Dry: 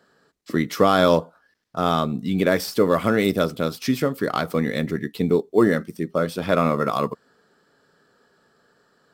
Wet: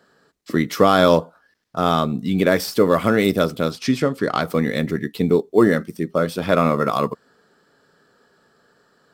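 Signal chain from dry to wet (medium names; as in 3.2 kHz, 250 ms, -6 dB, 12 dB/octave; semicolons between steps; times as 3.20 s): 3.71–4.41 s: low-pass 8.5 kHz 12 dB/octave; trim +2.5 dB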